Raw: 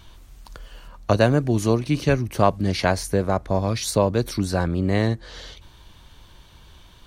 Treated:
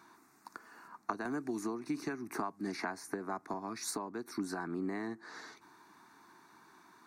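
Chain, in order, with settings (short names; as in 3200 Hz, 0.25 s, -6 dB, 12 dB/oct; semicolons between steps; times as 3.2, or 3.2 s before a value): HPF 300 Hz 24 dB/oct; tilt -2.5 dB/oct; compressor 6:1, threshold -28 dBFS, peak gain reduction 16 dB; fixed phaser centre 1300 Hz, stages 4; 1.25–3.54 three-band squash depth 70%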